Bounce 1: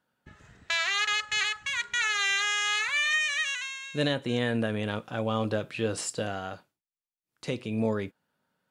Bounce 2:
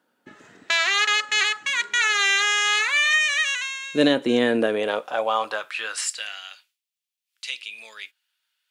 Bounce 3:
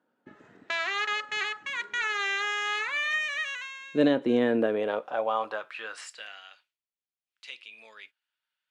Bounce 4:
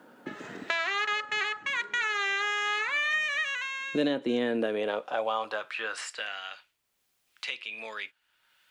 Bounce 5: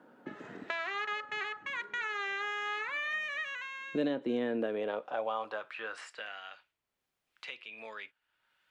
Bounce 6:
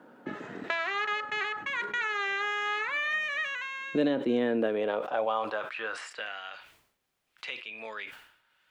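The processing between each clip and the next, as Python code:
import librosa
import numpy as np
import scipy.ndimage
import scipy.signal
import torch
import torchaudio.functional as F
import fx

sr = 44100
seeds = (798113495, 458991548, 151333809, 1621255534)

y1 = fx.filter_sweep_highpass(x, sr, from_hz=290.0, to_hz=2800.0, start_s=4.46, end_s=6.45, q=1.8)
y1 = y1 * librosa.db_to_amplitude(6.5)
y2 = fx.lowpass(y1, sr, hz=1200.0, slope=6)
y2 = y2 * librosa.db_to_amplitude(-3.0)
y3 = fx.band_squash(y2, sr, depth_pct=70)
y4 = fx.high_shelf(y3, sr, hz=3200.0, db=-12.0)
y4 = y4 * librosa.db_to_amplitude(-4.0)
y5 = fx.sustainer(y4, sr, db_per_s=84.0)
y5 = y5 * librosa.db_to_amplitude(5.0)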